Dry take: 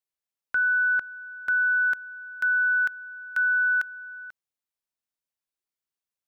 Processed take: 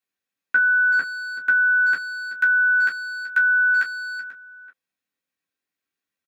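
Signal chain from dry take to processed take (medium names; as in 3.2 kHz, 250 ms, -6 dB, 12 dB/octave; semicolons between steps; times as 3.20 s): peaking EQ 890 Hz -7.5 dB 0.34 oct; speakerphone echo 380 ms, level -8 dB; reverberation, pre-delay 3 ms, DRR -4 dB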